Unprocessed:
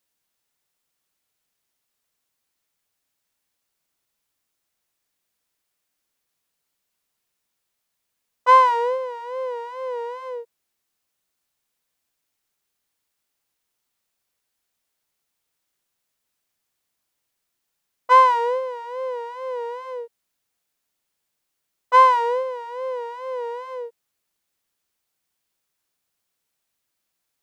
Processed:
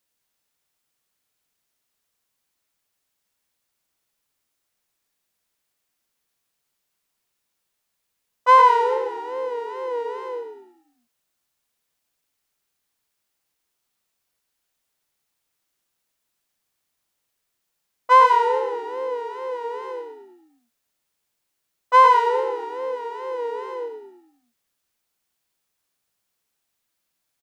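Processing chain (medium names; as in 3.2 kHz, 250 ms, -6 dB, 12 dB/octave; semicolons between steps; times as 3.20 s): frequency-shifting echo 105 ms, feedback 47%, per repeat -39 Hz, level -7 dB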